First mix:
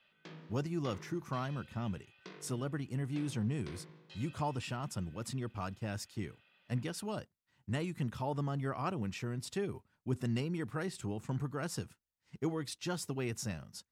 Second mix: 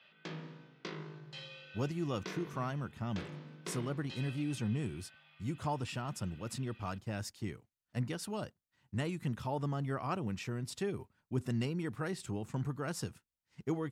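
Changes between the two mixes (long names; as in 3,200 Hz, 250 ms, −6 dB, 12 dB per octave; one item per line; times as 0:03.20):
speech: entry +1.25 s
background +7.0 dB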